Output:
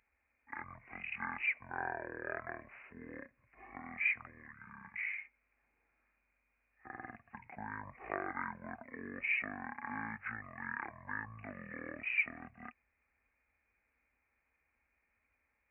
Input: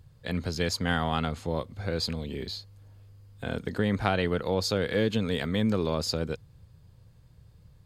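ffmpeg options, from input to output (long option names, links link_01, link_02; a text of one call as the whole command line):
ffmpeg -i in.wav -af "aderivative,acrusher=bits=8:mode=log:mix=0:aa=0.000001,aresample=11025,aresample=44100,asetrate=22050,aresample=44100,volume=2.5dB" out.wav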